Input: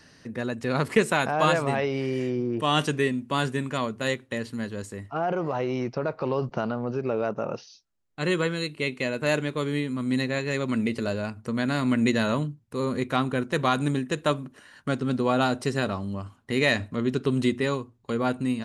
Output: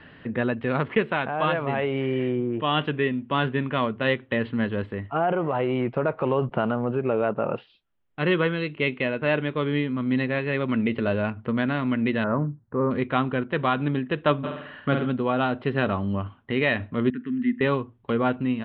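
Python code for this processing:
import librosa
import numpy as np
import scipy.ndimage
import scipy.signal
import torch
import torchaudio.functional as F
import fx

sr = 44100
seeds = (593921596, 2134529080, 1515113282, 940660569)

y = fx.steep_lowpass(x, sr, hz=1700.0, slope=36, at=(12.24, 12.91))
y = fx.room_flutter(y, sr, wall_m=8.5, rt60_s=0.72, at=(14.43, 15.05), fade=0.02)
y = fx.double_bandpass(y, sr, hz=660.0, octaves=2.9, at=(17.1, 17.61))
y = scipy.signal.sosfilt(scipy.signal.ellip(4, 1.0, 50, 3300.0, 'lowpass', fs=sr, output='sos'), y)
y = fx.rider(y, sr, range_db=5, speed_s=0.5)
y = y * 10.0 ** (2.5 / 20.0)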